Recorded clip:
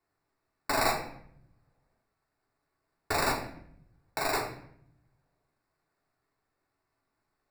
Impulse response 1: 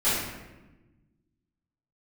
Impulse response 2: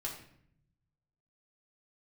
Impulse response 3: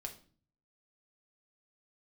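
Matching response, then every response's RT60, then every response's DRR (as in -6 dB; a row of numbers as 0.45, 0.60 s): 2; 1.1, 0.65, 0.45 s; -15.0, -3.5, 2.0 dB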